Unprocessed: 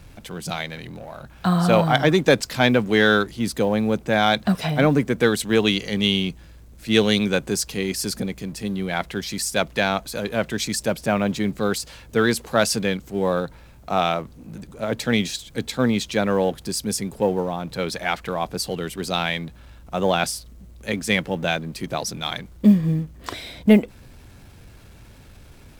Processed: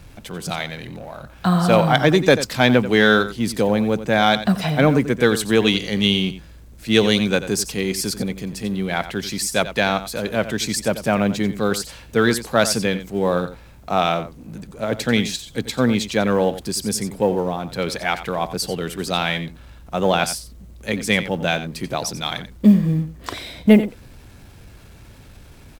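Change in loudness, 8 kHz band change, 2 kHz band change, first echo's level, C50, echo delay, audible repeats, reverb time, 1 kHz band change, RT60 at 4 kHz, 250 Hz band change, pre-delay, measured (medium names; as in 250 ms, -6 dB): +2.0 dB, +2.0 dB, +2.0 dB, -13.0 dB, no reverb, 89 ms, 1, no reverb, +2.0 dB, no reverb, +2.0 dB, no reverb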